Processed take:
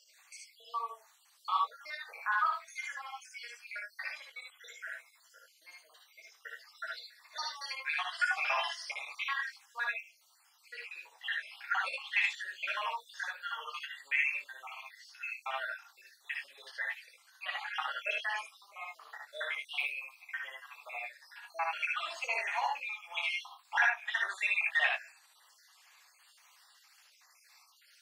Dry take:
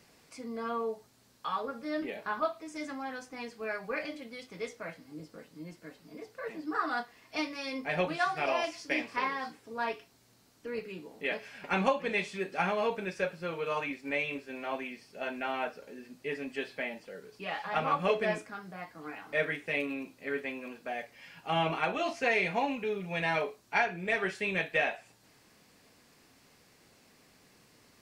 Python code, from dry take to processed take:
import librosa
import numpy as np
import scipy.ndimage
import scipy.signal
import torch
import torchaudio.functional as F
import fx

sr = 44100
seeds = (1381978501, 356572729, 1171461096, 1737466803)

y = fx.spec_dropout(x, sr, seeds[0], share_pct=69)
y = scipy.signal.sosfilt(scipy.signal.cheby2(4, 70, 210.0, 'highpass', fs=sr, output='sos'), y)
y = fx.doubler(y, sr, ms=21.0, db=-11.5)
y = fx.room_early_taps(y, sr, ms=(59, 74), db=(-4.5, -3.5))
y = y * librosa.db_to_amplitude(3.5)